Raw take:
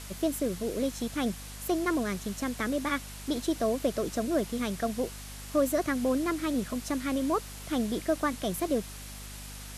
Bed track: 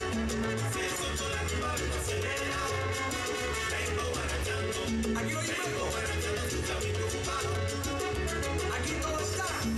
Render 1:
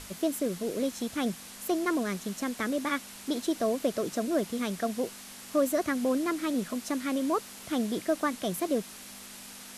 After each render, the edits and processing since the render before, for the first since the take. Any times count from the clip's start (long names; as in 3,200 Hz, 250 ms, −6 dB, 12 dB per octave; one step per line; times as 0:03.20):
mains-hum notches 50/100/150 Hz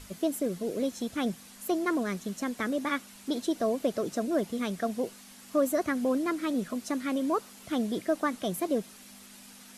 broadband denoise 7 dB, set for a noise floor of −46 dBFS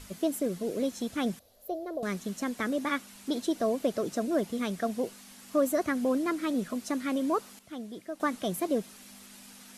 0:01.39–0:02.03: drawn EQ curve 100 Hz 0 dB, 180 Hz −26 dB, 610 Hz +6 dB, 930 Hz −17 dB, 2,400 Hz −21 dB, 4,000 Hz −12 dB, 8,700 Hz −22 dB, 15,000 Hz −1 dB
0:07.59–0:08.20: clip gain −10.5 dB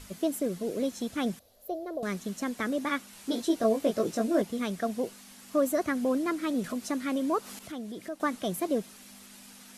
0:03.11–0:04.42: double-tracking delay 18 ms −3 dB
0:06.64–0:08.14: upward compression, threshold −33 dBFS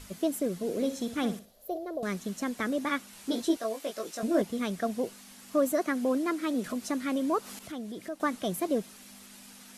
0:00.56–0:01.78: flutter between parallel walls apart 10.1 metres, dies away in 0.33 s
0:03.57–0:04.23: high-pass filter 1,200 Hz 6 dB per octave
0:05.72–0:06.66: high-pass filter 200 Hz 24 dB per octave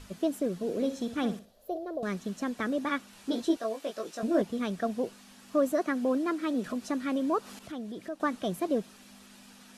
high-shelf EQ 7,100 Hz −11.5 dB
notch filter 2,100 Hz, Q 14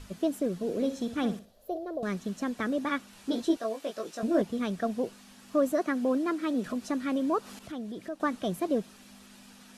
low-shelf EQ 150 Hz +3.5 dB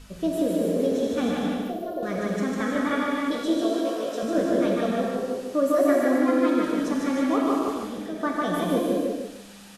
repeating echo 150 ms, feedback 28%, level −3.5 dB
reverb whose tail is shaped and stops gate 360 ms flat, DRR −3 dB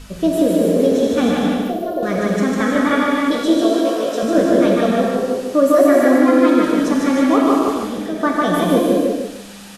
level +9 dB
brickwall limiter −2 dBFS, peak gain reduction 2.5 dB